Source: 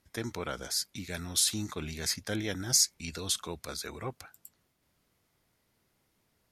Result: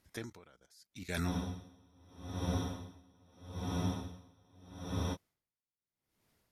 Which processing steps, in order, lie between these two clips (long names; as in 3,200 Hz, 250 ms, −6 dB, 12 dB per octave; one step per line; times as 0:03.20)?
output level in coarse steps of 14 dB
frozen spectrum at 0:01.32, 3.83 s
tremolo with a sine in dB 0.79 Hz, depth 32 dB
level +9 dB